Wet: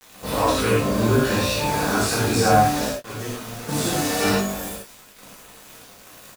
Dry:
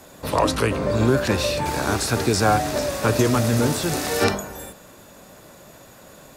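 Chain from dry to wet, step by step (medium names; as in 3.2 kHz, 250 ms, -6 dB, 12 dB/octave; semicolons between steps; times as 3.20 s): 2.87–3.69 s: gate -14 dBFS, range -21 dB; in parallel at +1 dB: compression, threshold -33 dBFS, peak gain reduction 18.5 dB; on the sum: flange 1.1 Hz, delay 4 ms, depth 3.7 ms, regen -78%; bit crusher 6-bit; doubling 20 ms -11 dB; gated-style reverb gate 140 ms flat, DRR -7.5 dB; trim -5 dB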